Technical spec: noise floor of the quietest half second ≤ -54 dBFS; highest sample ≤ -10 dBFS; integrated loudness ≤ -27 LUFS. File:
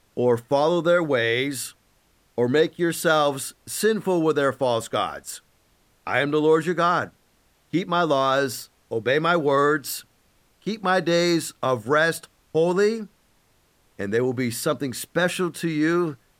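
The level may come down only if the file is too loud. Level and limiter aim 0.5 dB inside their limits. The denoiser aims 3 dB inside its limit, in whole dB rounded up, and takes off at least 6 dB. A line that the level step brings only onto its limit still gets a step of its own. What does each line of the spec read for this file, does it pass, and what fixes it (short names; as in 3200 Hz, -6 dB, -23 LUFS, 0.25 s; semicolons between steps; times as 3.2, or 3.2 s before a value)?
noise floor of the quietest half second -63 dBFS: OK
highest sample -7.0 dBFS: fail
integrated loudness -22.5 LUFS: fail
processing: gain -5 dB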